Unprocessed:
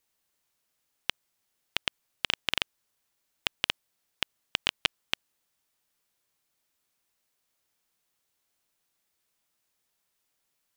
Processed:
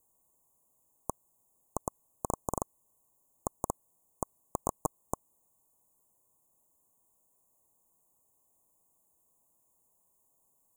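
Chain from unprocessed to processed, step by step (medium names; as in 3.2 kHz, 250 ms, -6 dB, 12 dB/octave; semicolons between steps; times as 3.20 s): Chebyshev band-stop 1.1–6.8 kHz, order 5; trim +7.5 dB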